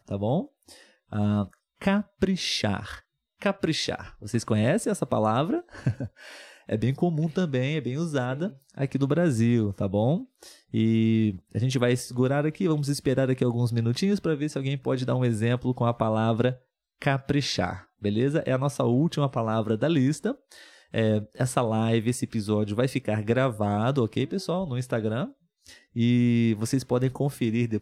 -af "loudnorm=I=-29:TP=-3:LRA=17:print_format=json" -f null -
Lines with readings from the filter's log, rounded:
"input_i" : "-26.2",
"input_tp" : "-9.3",
"input_lra" : "2.6",
"input_thresh" : "-36.6",